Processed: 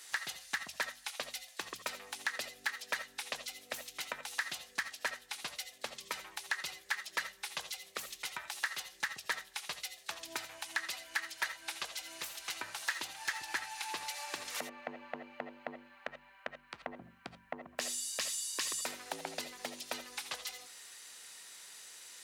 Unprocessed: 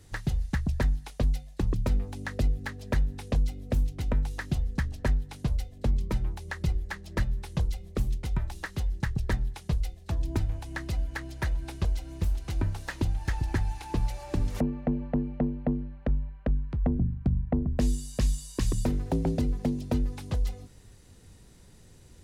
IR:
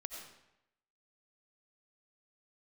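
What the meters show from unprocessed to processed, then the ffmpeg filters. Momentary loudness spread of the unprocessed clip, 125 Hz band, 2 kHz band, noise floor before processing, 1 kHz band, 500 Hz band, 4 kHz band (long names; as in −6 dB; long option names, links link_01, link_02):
5 LU, −37.0 dB, +3.0 dB, −52 dBFS, −1.5 dB, −10.5 dB, +6.5 dB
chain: -filter_complex "[0:a]highpass=1400,acompressor=threshold=-56dB:ratio=1.5[link_01];[1:a]atrim=start_sample=2205,atrim=end_sample=3969[link_02];[link_01][link_02]afir=irnorm=-1:irlink=0,volume=15.5dB"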